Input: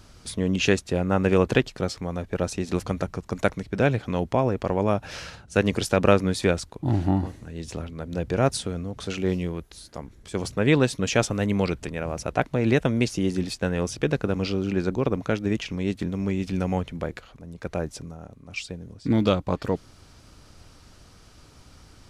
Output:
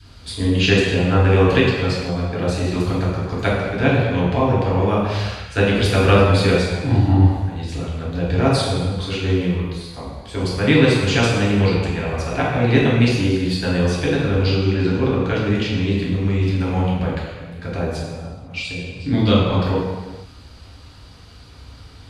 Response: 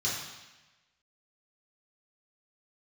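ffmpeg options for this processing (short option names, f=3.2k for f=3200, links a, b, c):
-filter_complex "[0:a]adynamicequalizer=threshold=0.0112:dfrequency=620:dqfactor=2.6:tfrequency=620:tqfactor=2.6:attack=5:release=100:ratio=0.375:range=2:mode=cutabove:tftype=bell[a];[1:a]atrim=start_sample=2205,afade=t=out:st=0.39:d=0.01,atrim=end_sample=17640,asetrate=29547,aresample=44100[b];[a][b]afir=irnorm=-1:irlink=0,volume=-4dB"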